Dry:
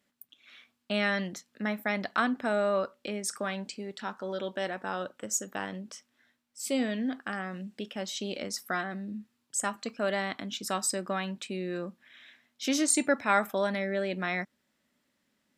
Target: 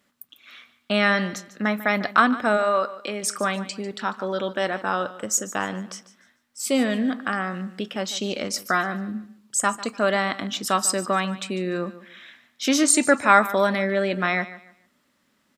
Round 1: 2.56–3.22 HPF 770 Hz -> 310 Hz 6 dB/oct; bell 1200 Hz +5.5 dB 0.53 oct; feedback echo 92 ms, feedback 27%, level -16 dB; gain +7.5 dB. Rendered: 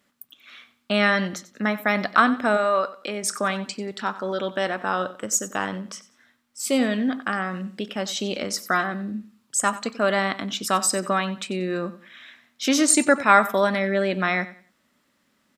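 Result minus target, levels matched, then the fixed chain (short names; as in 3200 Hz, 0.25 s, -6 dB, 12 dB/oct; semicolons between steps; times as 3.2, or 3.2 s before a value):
echo 55 ms early
2.56–3.22 HPF 770 Hz -> 310 Hz 6 dB/oct; bell 1200 Hz +5.5 dB 0.53 oct; feedback echo 0.147 s, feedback 27%, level -16 dB; gain +7.5 dB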